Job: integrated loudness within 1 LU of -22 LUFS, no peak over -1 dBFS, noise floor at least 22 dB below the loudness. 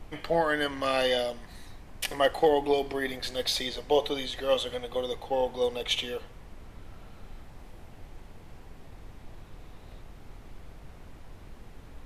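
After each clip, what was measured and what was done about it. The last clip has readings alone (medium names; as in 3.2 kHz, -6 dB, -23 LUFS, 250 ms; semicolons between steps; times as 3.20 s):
noise floor -49 dBFS; noise floor target -51 dBFS; loudness -28.5 LUFS; peak level -12.0 dBFS; loudness target -22.0 LUFS
-> noise print and reduce 6 dB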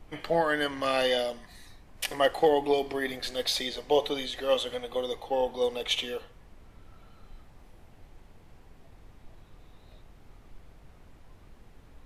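noise floor -55 dBFS; loudness -28.5 LUFS; peak level -12.0 dBFS; loudness target -22.0 LUFS
-> trim +6.5 dB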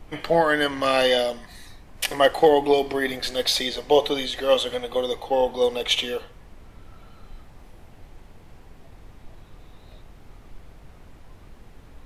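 loudness -22.0 LUFS; peak level -5.5 dBFS; noise floor -48 dBFS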